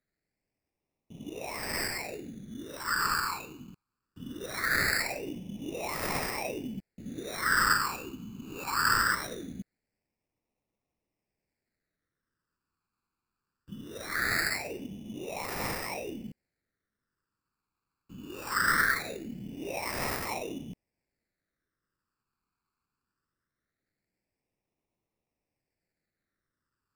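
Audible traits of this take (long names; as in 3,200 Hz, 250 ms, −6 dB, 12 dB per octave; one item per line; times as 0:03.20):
aliases and images of a low sample rate 3,200 Hz, jitter 0%
phaser sweep stages 12, 0.21 Hz, lowest notch 610–1,500 Hz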